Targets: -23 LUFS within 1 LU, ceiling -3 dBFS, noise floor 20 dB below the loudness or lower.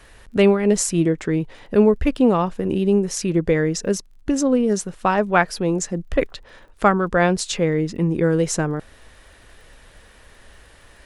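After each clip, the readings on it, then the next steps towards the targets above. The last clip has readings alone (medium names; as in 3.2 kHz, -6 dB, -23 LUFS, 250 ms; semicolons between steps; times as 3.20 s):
tick rate 26 per s; loudness -20.0 LUFS; peak level -2.0 dBFS; loudness target -23.0 LUFS
-> de-click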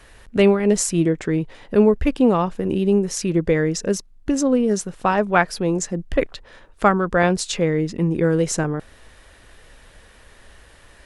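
tick rate 0 per s; loudness -20.0 LUFS; peak level -2.0 dBFS; loudness target -23.0 LUFS
-> trim -3 dB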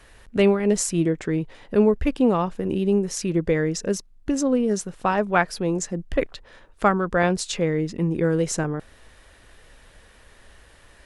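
loudness -23.0 LUFS; peak level -5.0 dBFS; noise floor -52 dBFS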